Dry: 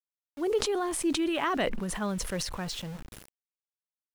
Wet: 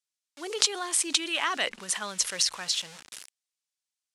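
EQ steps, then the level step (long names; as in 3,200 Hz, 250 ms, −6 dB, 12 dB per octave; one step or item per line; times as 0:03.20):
meter weighting curve ITU-R 468
−1.0 dB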